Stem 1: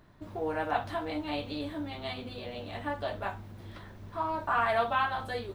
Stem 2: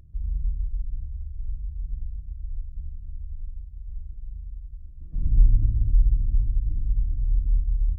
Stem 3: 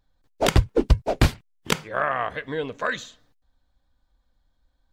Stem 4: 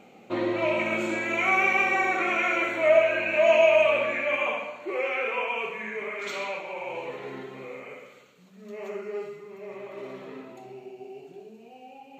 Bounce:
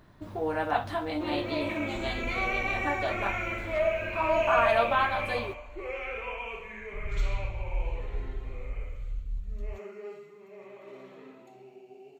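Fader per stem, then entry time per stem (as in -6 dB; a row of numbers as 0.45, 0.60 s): +2.5 dB, -12.5 dB, off, -8.0 dB; 0.00 s, 1.80 s, off, 0.90 s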